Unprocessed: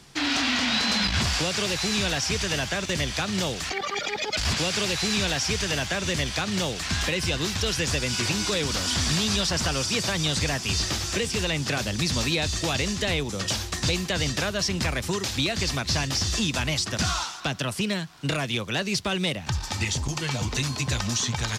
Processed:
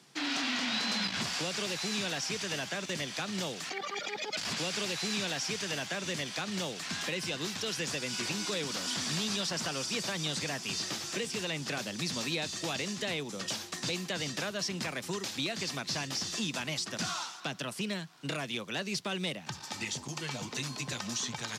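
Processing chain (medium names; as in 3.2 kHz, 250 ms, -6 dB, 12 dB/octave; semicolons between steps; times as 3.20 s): high-pass 150 Hz 24 dB/octave; trim -8 dB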